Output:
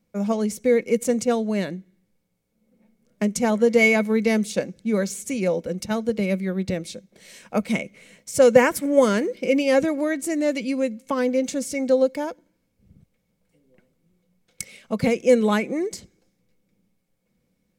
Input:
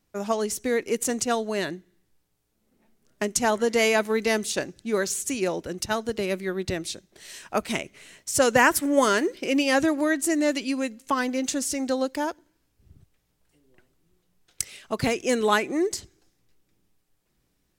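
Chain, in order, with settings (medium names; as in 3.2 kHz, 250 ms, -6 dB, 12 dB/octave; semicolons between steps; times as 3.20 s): small resonant body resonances 200/500/2200 Hz, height 15 dB, ringing for 45 ms; trim -4.5 dB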